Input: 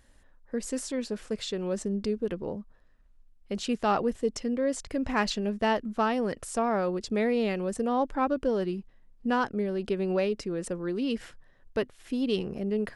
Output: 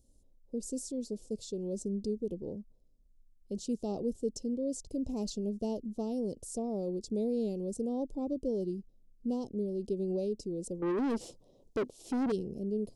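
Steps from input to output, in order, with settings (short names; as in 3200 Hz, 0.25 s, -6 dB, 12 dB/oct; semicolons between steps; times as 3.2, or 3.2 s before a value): Chebyshev band-stop 420–6100 Hz, order 2; 10.82–12.32 overdrive pedal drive 27 dB, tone 2000 Hz, clips at -20.5 dBFS; gain -4 dB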